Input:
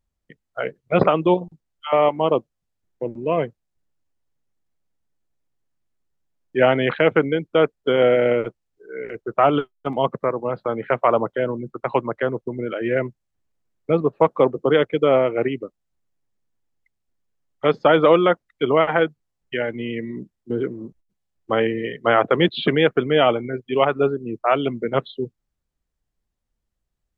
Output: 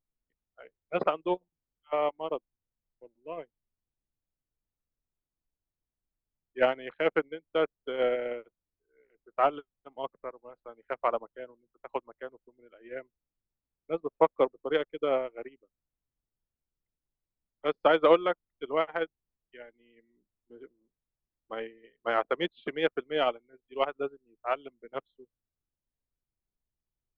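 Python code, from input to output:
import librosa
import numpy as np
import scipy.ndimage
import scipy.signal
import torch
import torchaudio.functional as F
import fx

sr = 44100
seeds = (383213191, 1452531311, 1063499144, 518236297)

y = fx.cheby_harmonics(x, sr, harmonics=(3,), levels_db=(-30,), full_scale_db=-2.5)
y = scipy.signal.sosfilt(scipy.signal.butter(2, 280.0, 'highpass', fs=sr, output='sos'), y)
y = fx.dmg_noise_colour(y, sr, seeds[0], colour='brown', level_db=-53.0)
y = fx.upward_expand(y, sr, threshold_db=-33.0, expansion=2.5)
y = y * 10.0 ** (-4.0 / 20.0)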